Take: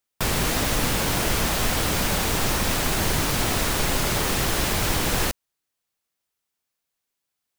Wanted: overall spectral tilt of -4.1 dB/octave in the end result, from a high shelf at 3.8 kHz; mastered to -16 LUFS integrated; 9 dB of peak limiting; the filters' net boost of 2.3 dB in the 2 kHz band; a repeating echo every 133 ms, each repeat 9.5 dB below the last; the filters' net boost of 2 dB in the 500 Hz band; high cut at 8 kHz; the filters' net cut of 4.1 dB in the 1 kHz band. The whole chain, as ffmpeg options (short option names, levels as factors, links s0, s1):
-af "lowpass=8000,equalizer=f=500:t=o:g=4.5,equalizer=f=1000:t=o:g=-8.5,equalizer=f=2000:t=o:g=7,highshelf=f=3800:g=-7.5,alimiter=limit=0.112:level=0:latency=1,aecho=1:1:133|266|399|532:0.335|0.111|0.0365|0.012,volume=3.98"